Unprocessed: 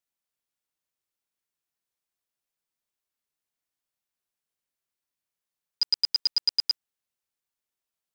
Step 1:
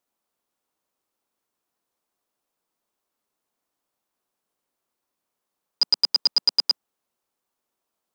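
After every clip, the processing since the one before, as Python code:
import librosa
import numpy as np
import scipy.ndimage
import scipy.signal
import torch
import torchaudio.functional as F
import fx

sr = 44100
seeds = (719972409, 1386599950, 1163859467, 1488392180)

y = fx.band_shelf(x, sr, hz=500.0, db=9.0, octaves=3.0)
y = y * 10.0 ** (4.5 / 20.0)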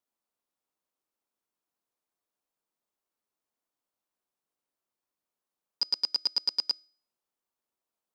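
y = fx.comb_fb(x, sr, f0_hz=310.0, decay_s=0.48, harmonics='all', damping=0.0, mix_pct=30)
y = y * 10.0 ** (-5.5 / 20.0)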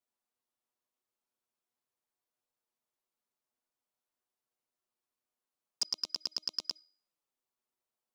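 y = fx.env_flanger(x, sr, rest_ms=8.2, full_db=-25.5)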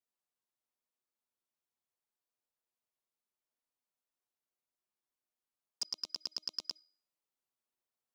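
y = fx.rider(x, sr, range_db=10, speed_s=0.5)
y = y * 10.0 ** (-3.0 / 20.0)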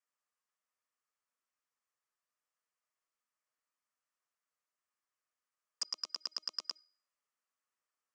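y = fx.cabinet(x, sr, low_hz=330.0, low_slope=12, high_hz=8900.0, hz=(360.0, 790.0, 1200.0, 1800.0, 3800.0), db=(-8, -5, 8, 5, -10))
y = y * 10.0 ** (1.5 / 20.0)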